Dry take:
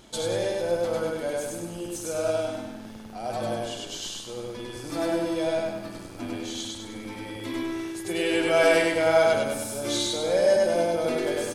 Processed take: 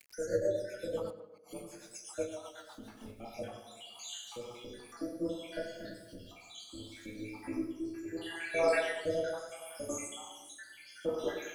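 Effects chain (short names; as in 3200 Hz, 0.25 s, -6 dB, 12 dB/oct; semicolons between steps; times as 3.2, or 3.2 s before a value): random spectral dropouts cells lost 83%; two-slope reverb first 0.68 s, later 1.8 s, DRR -4 dB; bit-crush 10-bit; 1.1–1.53 flipped gate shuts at -29 dBFS, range -39 dB; upward compressor, threshold -34 dBFS; tape echo 96 ms, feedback 60%, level -10 dB, low-pass 2800 Hz; rotary speaker horn 8 Hz, later 0.7 Hz, at 2.61; gain -7.5 dB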